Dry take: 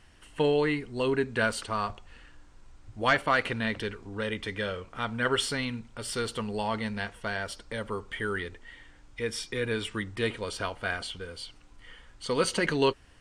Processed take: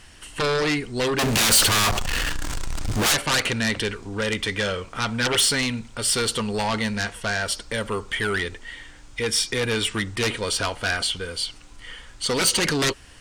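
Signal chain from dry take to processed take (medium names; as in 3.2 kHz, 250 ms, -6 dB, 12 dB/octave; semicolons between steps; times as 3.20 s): 1.19–3.12 s: power-law waveshaper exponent 0.5; sine folder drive 12 dB, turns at -12 dBFS; treble shelf 2.9 kHz +9 dB; trim -8 dB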